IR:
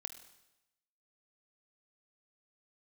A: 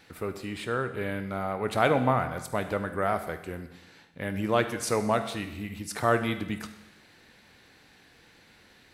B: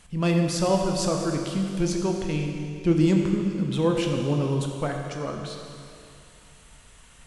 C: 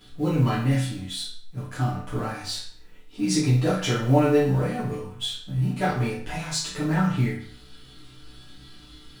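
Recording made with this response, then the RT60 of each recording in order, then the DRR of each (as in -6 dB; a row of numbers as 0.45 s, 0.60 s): A; 0.95 s, 2.5 s, 0.55 s; 8.5 dB, 2.0 dB, -11.0 dB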